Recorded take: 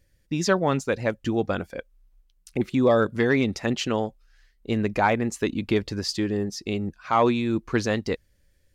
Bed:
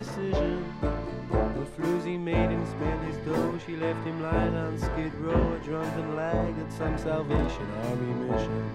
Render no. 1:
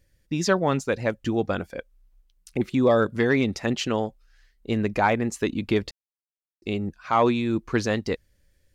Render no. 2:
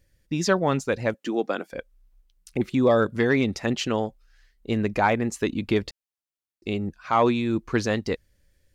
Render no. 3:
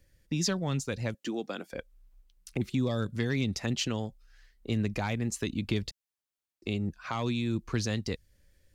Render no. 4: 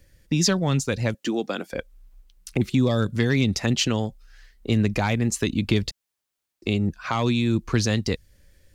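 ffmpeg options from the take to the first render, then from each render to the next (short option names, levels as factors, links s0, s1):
-filter_complex "[0:a]asplit=3[s0][s1][s2];[s0]atrim=end=5.91,asetpts=PTS-STARTPTS,afade=t=out:st=5.906:d=0.004:c=hsin[s3];[s1]atrim=start=5.91:end=6.62,asetpts=PTS-STARTPTS,volume=0[s4];[s2]atrim=start=6.62,asetpts=PTS-STARTPTS,afade=t=in:d=0.004:c=hsin[s5];[s3][s4][s5]concat=n=3:v=0:a=1"
-filter_complex "[0:a]asettb=1/sr,asplit=3[s0][s1][s2];[s0]atrim=end=1.144[s3];[s1]atrim=start=1.14:end=1.72,asetpts=PTS-STARTPTS,afade=t=in:d=0.004:c=qsin,afade=t=out:st=0.576:d=0.004:c=qsin,highpass=f=240:w=0.5412,highpass=f=240:w=1.3066[s4];[s2]atrim=start=1.716[s5];[s3][s4]acrossfade=d=0.004:c1=hsin:c2=qsin[s6];[s6][s5]acrossfade=d=0.004:c1=qsin:c2=hsin"
-filter_complex "[0:a]acrossover=split=190|3000[s0][s1][s2];[s1]acompressor=threshold=0.0158:ratio=4[s3];[s0][s3][s2]amix=inputs=3:normalize=0"
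-af "volume=2.66"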